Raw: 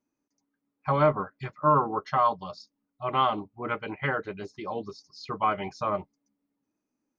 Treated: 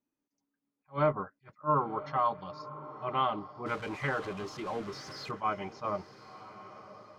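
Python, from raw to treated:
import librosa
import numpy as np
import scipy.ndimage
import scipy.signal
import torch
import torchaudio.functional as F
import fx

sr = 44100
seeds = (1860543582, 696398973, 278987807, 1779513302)

y = fx.zero_step(x, sr, step_db=-34.5, at=(3.66, 5.31))
y = fx.air_absorb(y, sr, metres=69.0)
y = fx.echo_diffused(y, sr, ms=1050, feedback_pct=41, wet_db=-15)
y = fx.attack_slew(y, sr, db_per_s=350.0)
y = y * 10.0 ** (-5.0 / 20.0)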